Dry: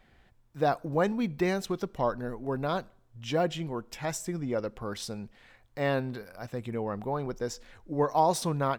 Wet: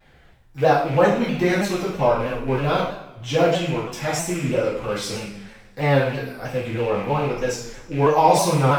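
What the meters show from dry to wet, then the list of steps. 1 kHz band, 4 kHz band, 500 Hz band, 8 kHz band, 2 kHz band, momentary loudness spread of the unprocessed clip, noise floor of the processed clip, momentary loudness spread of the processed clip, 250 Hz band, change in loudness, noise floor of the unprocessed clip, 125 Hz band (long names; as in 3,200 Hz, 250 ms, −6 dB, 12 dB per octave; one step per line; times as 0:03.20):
+9.5 dB, +10.0 dB, +10.0 dB, +9.5 dB, +11.5 dB, 11 LU, −51 dBFS, 12 LU, +8.0 dB, +9.5 dB, −63 dBFS, +11.0 dB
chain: loose part that buzzes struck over −40 dBFS, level −33 dBFS
coupled-rooms reverb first 0.69 s, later 2.3 s, from −22 dB, DRR −8.5 dB
pitch modulation by a square or saw wave saw down 3.1 Hz, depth 100 cents
level +1 dB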